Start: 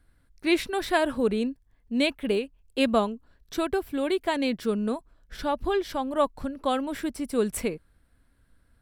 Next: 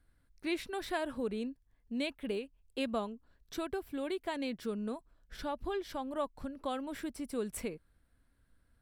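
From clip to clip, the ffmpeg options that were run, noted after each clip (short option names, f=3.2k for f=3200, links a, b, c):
-af "acompressor=threshold=-32dB:ratio=1.5,volume=-7dB"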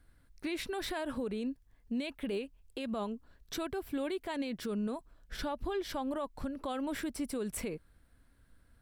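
-af "alimiter=level_in=10dB:limit=-24dB:level=0:latency=1:release=76,volume=-10dB,volume=6dB"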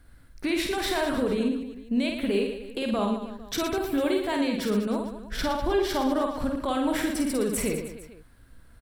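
-af "aecho=1:1:50|115|199.5|309.4|452.2:0.631|0.398|0.251|0.158|0.1,volume=8.5dB"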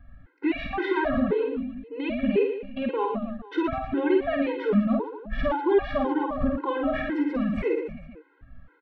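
-af "lowpass=f=2.4k:w=0.5412,lowpass=f=2.4k:w=1.3066,afftfilt=real='re*gt(sin(2*PI*1.9*pts/sr)*(1-2*mod(floor(b*sr/1024/270),2)),0)':imag='im*gt(sin(2*PI*1.9*pts/sr)*(1-2*mod(floor(b*sr/1024/270),2)),0)':win_size=1024:overlap=0.75,volume=5.5dB"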